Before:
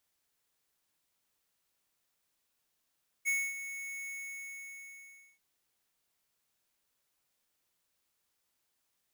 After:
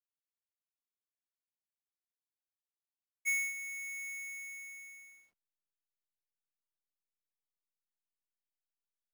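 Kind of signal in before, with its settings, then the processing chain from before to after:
ADSR square 2.21 kHz, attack 32 ms, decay 250 ms, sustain -12 dB, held 0.83 s, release 1310 ms -29.5 dBFS
hysteresis with a dead band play -58.5 dBFS

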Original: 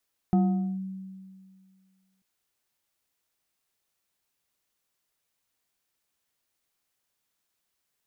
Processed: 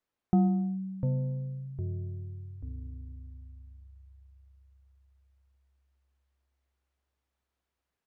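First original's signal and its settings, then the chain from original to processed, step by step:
FM tone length 1.89 s, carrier 190 Hz, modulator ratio 2.82, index 0.52, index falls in 0.46 s linear, decay 2.04 s, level -17 dB
ever faster or slower copies 564 ms, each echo -6 st, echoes 3, each echo -6 dB; low-pass 1.2 kHz 6 dB/octave; feedback delay 144 ms, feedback 31%, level -23 dB

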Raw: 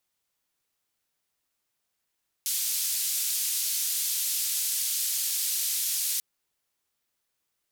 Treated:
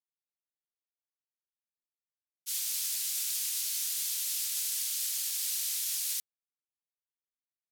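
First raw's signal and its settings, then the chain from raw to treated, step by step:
noise band 4.2–15 kHz, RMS -28.5 dBFS 3.74 s
expander -23 dBFS

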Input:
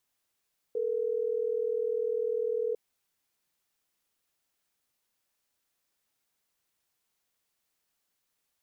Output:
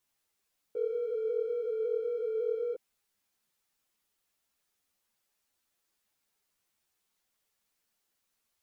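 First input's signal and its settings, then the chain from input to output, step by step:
call progress tone ringback tone, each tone -30 dBFS
in parallel at -8 dB: saturation -38.5 dBFS; on the sum: three-phase chorus

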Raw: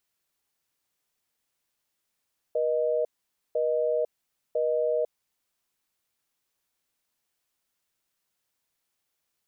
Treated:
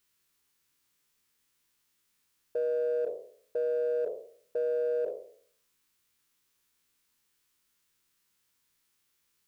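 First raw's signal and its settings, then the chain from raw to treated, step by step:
call progress tone busy tone, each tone -25.5 dBFS 2.98 s
spectral sustain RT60 0.58 s; peaking EQ 670 Hz -14 dB 0.48 oct; in parallel at -7.5 dB: hard clipper -32.5 dBFS

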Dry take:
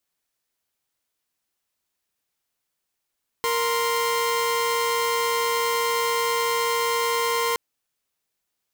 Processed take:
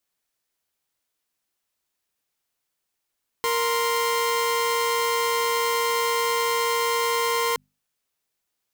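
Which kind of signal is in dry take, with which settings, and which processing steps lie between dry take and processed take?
chord A#4/C6 saw, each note -21.5 dBFS 4.12 s
hum notches 50/100/150/200/250 Hz

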